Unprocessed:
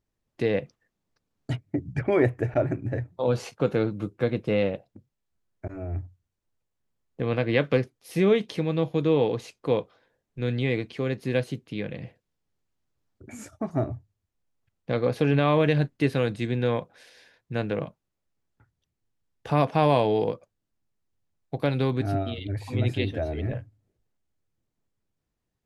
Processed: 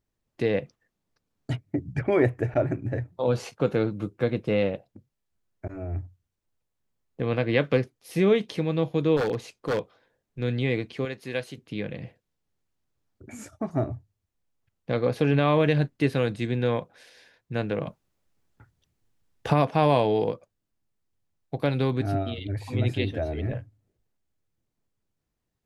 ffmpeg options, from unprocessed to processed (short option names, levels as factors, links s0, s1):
-filter_complex "[0:a]asplit=3[s0][s1][s2];[s0]afade=t=out:st=9.16:d=0.02[s3];[s1]aeval=exprs='0.106*(abs(mod(val(0)/0.106+3,4)-2)-1)':c=same,afade=t=in:st=9.16:d=0.02,afade=t=out:st=10.42:d=0.02[s4];[s2]afade=t=in:st=10.42:d=0.02[s5];[s3][s4][s5]amix=inputs=3:normalize=0,asettb=1/sr,asplit=3[s6][s7][s8];[s6]atrim=end=11.054[s9];[s7]atrim=start=11.05:end=11.58,asetpts=PTS-STARTPTS,afade=t=in:d=0.004:c=qsin,afade=t=out:st=0.526:d=0.004:c=qsin,lowshelf=f=430:g=-11.5[s10];[s8]atrim=start=11.576[s11];[s9][s10]acrossfade=d=0.004:c1=hsin:c2=qsin[s12];[s12][s11]acrossfade=d=0.004:c1=qsin:c2=hsin,asplit=3[s13][s14][s15];[s13]afade=t=out:st=17.85:d=0.02[s16];[s14]acontrast=89,afade=t=in:st=17.85:d=0.02,afade=t=out:st=19.52:d=0.02[s17];[s15]afade=t=in:st=19.52:d=0.02[s18];[s16][s17][s18]amix=inputs=3:normalize=0"